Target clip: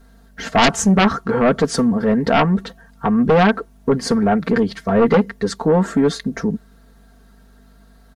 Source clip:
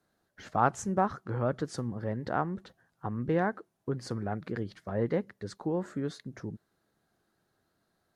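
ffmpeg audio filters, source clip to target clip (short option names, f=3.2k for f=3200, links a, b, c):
-af "aeval=exprs='val(0)+0.000447*(sin(2*PI*50*n/s)+sin(2*PI*2*50*n/s)/2+sin(2*PI*3*50*n/s)/3+sin(2*PI*4*50*n/s)/4+sin(2*PI*5*50*n/s)/5)':c=same,aecho=1:1:4.4:0.87,aeval=exprs='0.376*sin(PI/2*4.47*val(0)/0.376)':c=same"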